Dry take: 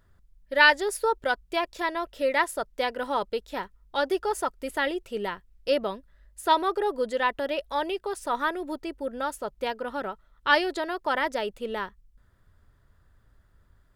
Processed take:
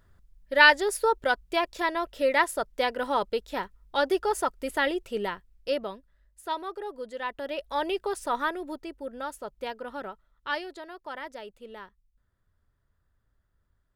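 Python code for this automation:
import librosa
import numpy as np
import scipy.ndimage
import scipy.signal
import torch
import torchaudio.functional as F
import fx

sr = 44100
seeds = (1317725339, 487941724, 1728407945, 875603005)

y = fx.gain(x, sr, db=fx.line((5.16, 1.0), (6.43, -10.0), (7.11, -10.0), (7.99, 2.0), (8.94, -5.0), (10.07, -5.0), (10.74, -12.0)))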